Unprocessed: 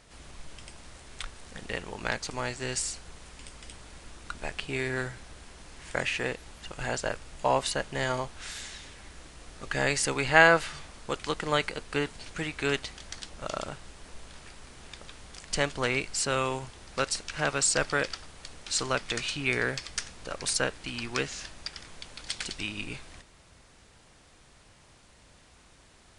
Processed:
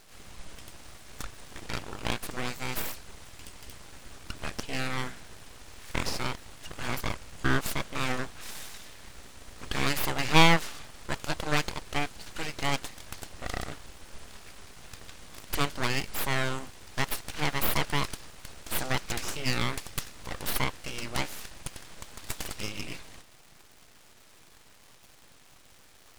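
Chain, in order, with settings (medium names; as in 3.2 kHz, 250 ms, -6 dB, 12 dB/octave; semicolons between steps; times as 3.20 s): full-wave rectifier; crackle 390 per s -46 dBFS; trim +1.5 dB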